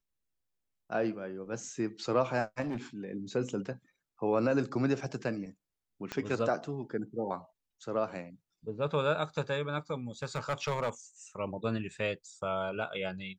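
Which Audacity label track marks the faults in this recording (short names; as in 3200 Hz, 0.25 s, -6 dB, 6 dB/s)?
2.610000	2.770000	clipped -31 dBFS
6.120000	6.120000	pop -20 dBFS
10.230000	10.890000	clipped -26 dBFS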